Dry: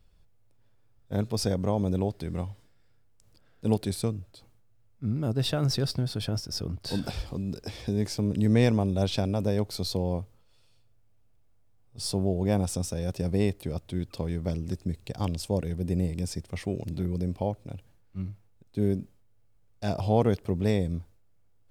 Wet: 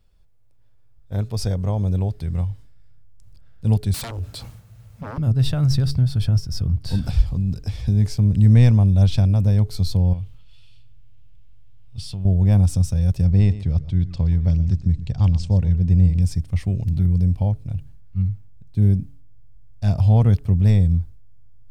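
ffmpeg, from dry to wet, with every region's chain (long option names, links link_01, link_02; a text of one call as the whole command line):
ffmpeg -i in.wav -filter_complex "[0:a]asettb=1/sr,asplit=3[link_01][link_02][link_03];[link_01]atrim=end=3.944[link_04];[link_02]atrim=start=3.94:end=5.18,asetpts=PTS-STARTPTS,afade=type=in:duration=0.004:curve=qsin,afade=type=out:start_time=1.236:duration=0.004:curve=qsin,acompressor=threshold=-58dB:ratio=1.5:attack=3.2:release=140:knee=1:detection=peak,aeval=exprs='0.0447*sin(PI/2*8.91*val(0)/0.0447)':channel_layout=same,highpass=frequency=250:poles=1[link_05];[link_03]atrim=start=5.176[link_06];[link_04][link_05]acrossfade=duration=0.004:curve1=hsin:curve2=qsin[link_07];[link_07][link_06]acrossfade=duration=0.004:curve1=qsin:curve2=hsin,asettb=1/sr,asplit=3[link_08][link_09][link_10];[link_08]atrim=end=10.134[link_11];[link_09]atrim=start=10.13:end=12.25,asetpts=PTS-STARTPTS,afade=type=in:duration=0.004:curve=qsin,afade=type=out:start_time=2.116:duration=0.004:curve=qsin,equalizer=frequency=3000:width_type=o:width=1.2:gain=15,acompressor=threshold=-36dB:ratio=4:attack=3.2:release=140:knee=1:detection=peak[link_12];[link_10]atrim=start=12.246[link_13];[link_11][link_12]acrossfade=duration=0.004:curve1=hsin:curve2=qsin[link_14];[link_14][link_13]acrossfade=duration=0.004:curve1=qsin:curve2=hsin,asettb=1/sr,asplit=3[link_15][link_16][link_17];[link_15]atrim=end=13.254[link_18];[link_16]atrim=start=13.25:end=16.22,asetpts=PTS-STARTPTS,afade=type=in:duration=0.004:curve=qsin,afade=type=out:start_time=2.966:duration=0.004:curve=qsin,lowpass=frequency=7100:width=0.5412,lowpass=frequency=7100:width=1.3066,aecho=1:1:122:0.168,atrim=end_sample=130977[link_19];[link_17]atrim=start=16.216[link_20];[link_18][link_19]acrossfade=duration=0.004:curve1=hsin:curve2=qsin[link_21];[link_21][link_20]acrossfade=duration=0.004:curve1=qsin:curve2=hsin,asubboost=boost=11:cutoff=110,bandreject=frequency=141:width_type=h:width=4,bandreject=frequency=282:width_type=h:width=4,bandreject=frequency=423:width_type=h:width=4" out.wav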